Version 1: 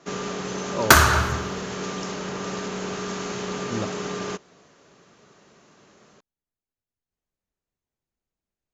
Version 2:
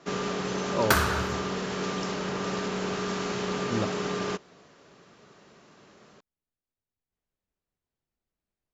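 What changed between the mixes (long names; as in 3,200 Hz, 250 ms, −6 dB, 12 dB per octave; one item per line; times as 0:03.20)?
second sound −9.5 dB
master: add parametric band 6,500 Hz −6.5 dB 0.24 octaves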